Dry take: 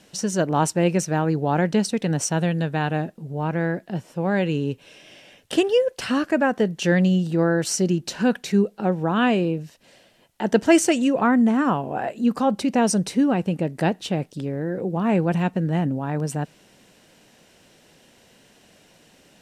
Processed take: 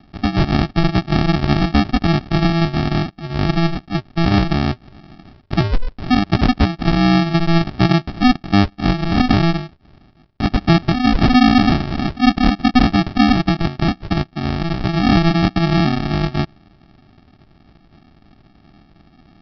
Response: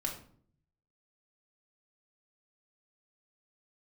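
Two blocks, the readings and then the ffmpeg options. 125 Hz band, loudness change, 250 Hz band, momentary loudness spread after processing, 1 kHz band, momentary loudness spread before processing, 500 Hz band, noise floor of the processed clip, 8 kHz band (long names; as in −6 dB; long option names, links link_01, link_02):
+8.0 dB, +5.5 dB, +5.5 dB, 8 LU, +5.5 dB, 9 LU, −2.0 dB, −52 dBFS, below −10 dB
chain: -af "alimiter=limit=-11.5dB:level=0:latency=1:release=310,aresample=11025,acrusher=samples=22:mix=1:aa=0.000001,aresample=44100,volume=7dB"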